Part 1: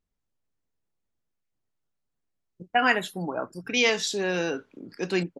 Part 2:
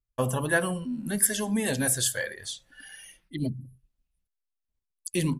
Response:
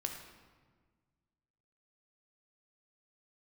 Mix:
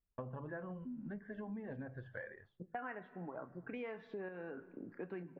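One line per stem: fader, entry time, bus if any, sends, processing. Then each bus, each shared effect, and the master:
-5.0 dB, 0.00 s, send -14 dB, de-esser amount 60%; random-step tremolo
-7.0 dB, 0.00 s, no send, de-esser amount 80%; auto duck -19 dB, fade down 0.25 s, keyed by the first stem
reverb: on, RT60 1.5 s, pre-delay 14 ms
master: LPF 1800 Hz 24 dB/oct; compressor 5:1, threshold -43 dBFS, peak gain reduction 18 dB

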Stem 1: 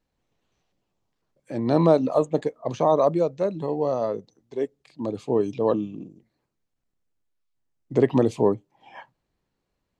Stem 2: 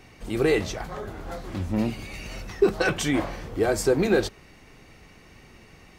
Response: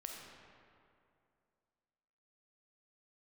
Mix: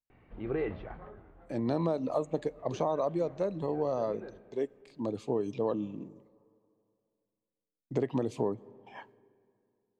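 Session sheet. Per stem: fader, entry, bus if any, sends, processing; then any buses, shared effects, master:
-5.0 dB, 0.00 s, send -20 dB, gate with hold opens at -43 dBFS
-10.0 dB, 0.10 s, send -20.5 dB, Gaussian blur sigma 3.7 samples; auto duck -17 dB, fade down 0.55 s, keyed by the first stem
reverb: on, RT60 2.5 s, pre-delay 5 ms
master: compressor 6:1, threshold -26 dBFS, peak gain reduction 10 dB

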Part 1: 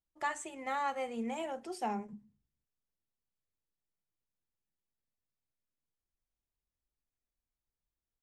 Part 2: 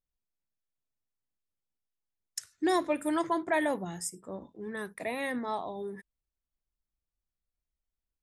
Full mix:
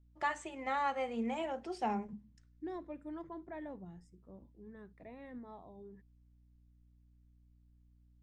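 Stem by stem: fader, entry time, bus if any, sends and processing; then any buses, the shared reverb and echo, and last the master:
+0.5 dB, 0.00 s, no send, hum 60 Hz, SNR 26 dB
-20.0 dB, 0.00 s, no send, tilt -3.5 dB/oct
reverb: off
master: LPF 5100 Hz 12 dB/oct; low shelf 60 Hz +10 dB

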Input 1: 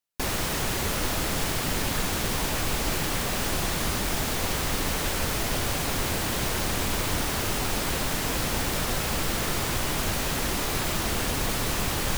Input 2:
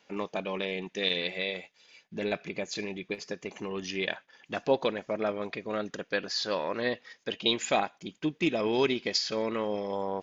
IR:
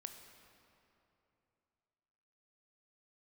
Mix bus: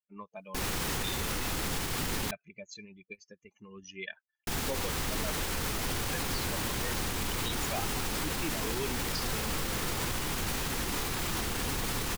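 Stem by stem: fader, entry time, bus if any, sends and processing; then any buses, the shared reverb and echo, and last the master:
-2.0 dB, 0.35 s, muted 2.31–4.47, no send, bell 620 Hz -8.5 dB 0.23 oct
-3.0 dB, 0.00 s, no send, per-bin expansion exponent 2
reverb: off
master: limiter -23 dBFS, peak gain reduction 9 dB

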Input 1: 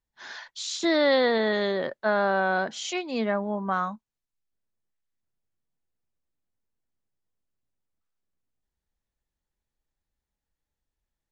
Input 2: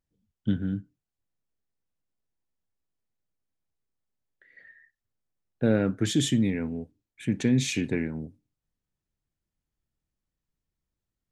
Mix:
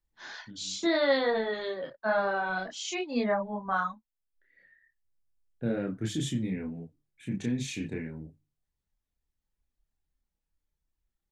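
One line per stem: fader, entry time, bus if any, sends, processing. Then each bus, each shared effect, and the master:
-0.5 dB, 0.00 s, no send, reverb removal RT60 2 s; vocal rider within 4 dB 2 s
-5.0 dB, 0.00 s, no send, notches 50/100/150 Hz; auto duck -23 dB, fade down 0.80 s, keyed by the first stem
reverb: off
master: low shelf 130 Hz +5 dB; chorus voices 6, 0.61 Hz, delay 29 ms, depth 3.8 ms

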